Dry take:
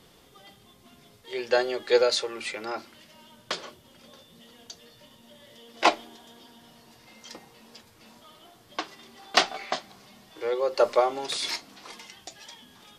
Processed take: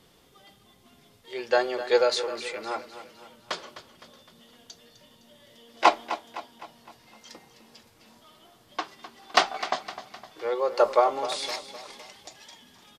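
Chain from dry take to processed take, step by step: dynamic bell 990 Hz, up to +7 dB, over -39 dBFS, Q 0.92; on a send: feedback delay 256 ms, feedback 48%, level -13 dB; on the sum: trim -3 dB

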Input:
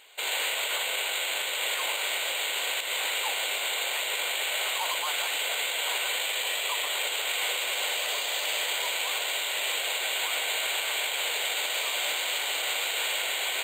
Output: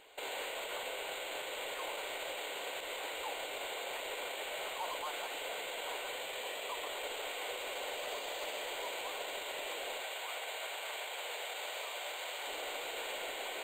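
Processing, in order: 10.00–12.47 s: high-pass 530 Hz 12 dB/octave; peak limiter -27 dBFS, peak gain reduction 8.5 dB; tilt shelf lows +8.5 dB; trim -1 dB

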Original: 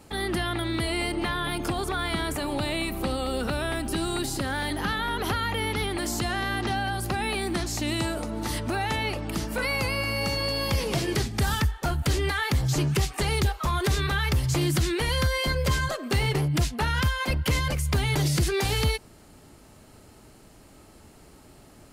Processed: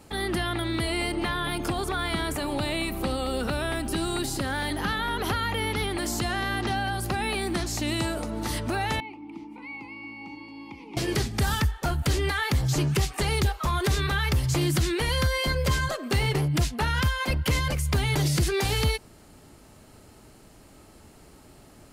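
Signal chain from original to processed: 9.00–10.97 s: vowel filter u

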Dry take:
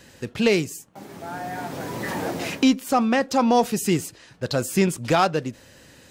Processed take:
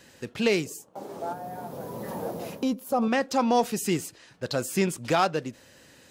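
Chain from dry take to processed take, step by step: bass shelf 120 Hz -8 dB; 1.33–3.02 s: time-frequency box 250–9700 Hz -9 dB; 0.66–3.08 s: ten-band graphic EQ 500 Hz +11 dB, 1 kHz +5 dB, 2 kHz -7 dB; trim -3.5 dB

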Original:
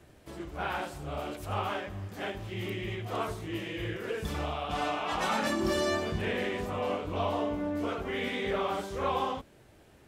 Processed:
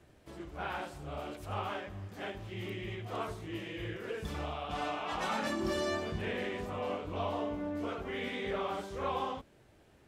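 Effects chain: treble shelf 9.9 kHz -6 dB; trim -4.5 dB

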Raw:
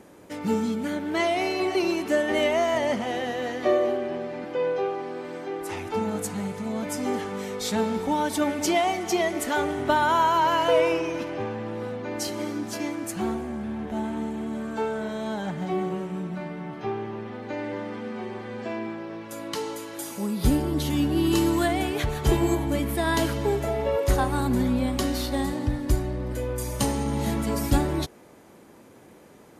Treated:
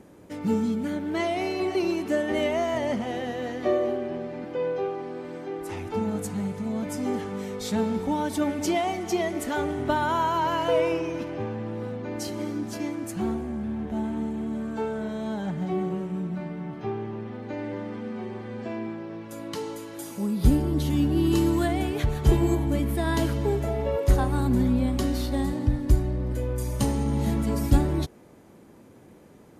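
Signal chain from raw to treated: bass shelf 340 Hz +9 dB; trim -5 dB

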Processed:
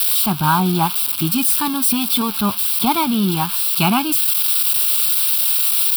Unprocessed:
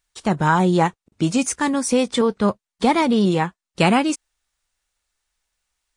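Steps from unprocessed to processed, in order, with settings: zero-crossing glitches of -10 dBFS; static phaser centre 1.9 kHz, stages 6; trim +2.5 dB

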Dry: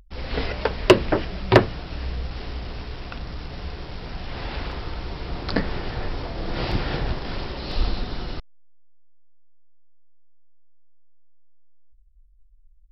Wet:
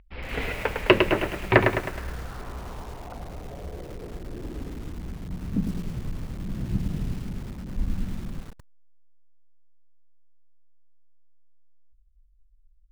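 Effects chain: low-pass sweep 2.4 kHz -> 200 Hz, 1.43–5.30 s; bit-crushed delay 105 ms, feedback 55%, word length 6-bit, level -5 dB; trim -5 dB

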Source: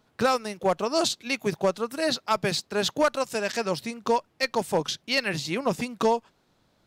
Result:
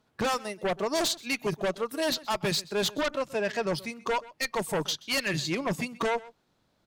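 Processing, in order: 3.01–3.67 s: tone controls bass +5 dB, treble -8 dB; spectral noise reduction 7 dB; Chebyshev shaper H 5 -7 dB, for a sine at -13 dBFS; echo from a far wall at 22 m, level -20 dB; trim -8 dB

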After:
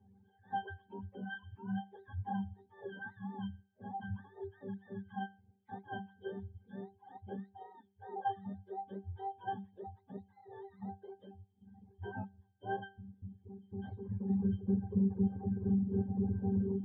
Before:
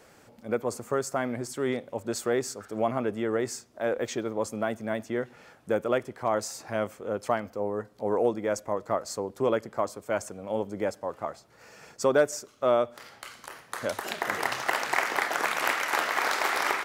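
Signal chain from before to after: spectrum inverted on a logarithmic axis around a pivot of 620 Hz; pitch-class resonator G, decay 0.43 s; reverb removal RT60 1.2 s; trim +6 dB

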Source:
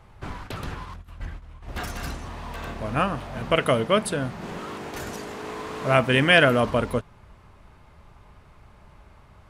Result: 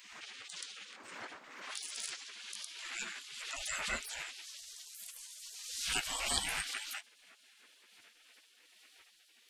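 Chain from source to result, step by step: pitch bend over the whole clip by -7.5 st ending unshifted; spectral gate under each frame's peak -30 dB weak; swell ahead of each attack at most 44 dB/s; trim +8 dB

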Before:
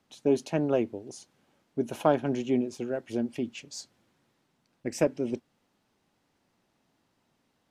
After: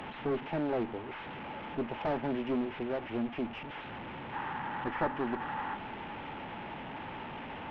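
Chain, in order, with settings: one-bit delta coder 16 kbps, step -36.5 dBFS; peaking EQ 870 Hz +11 dB 0.21 oct; valve stage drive 27 dB, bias 0.3; time-frequency box 4.34–5.75 s, 740–2000 Hz +8 dB

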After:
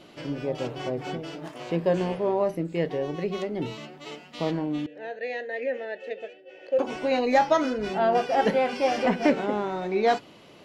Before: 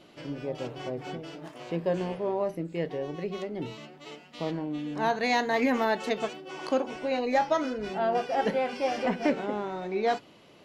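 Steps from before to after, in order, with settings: 4.86–6.79 s: vowel filter e; trim +4.5 dB

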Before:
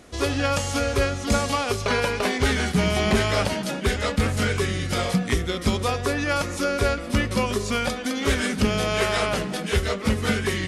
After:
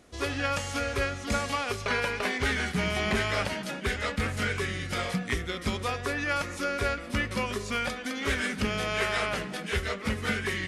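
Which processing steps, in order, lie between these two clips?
dynamic bell 1.9 kHz, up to +7 dB, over -40 dBFS, Q 0.96; trim -8.5 dB

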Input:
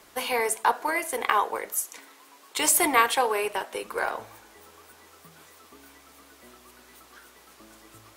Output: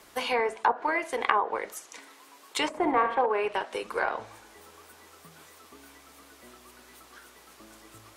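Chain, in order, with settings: 2.67–3.26 s: flutter echo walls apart 11.3 m, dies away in 0.52 s; low-pass that closes with the level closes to 1 kHz, closed at -18.5 dBFS

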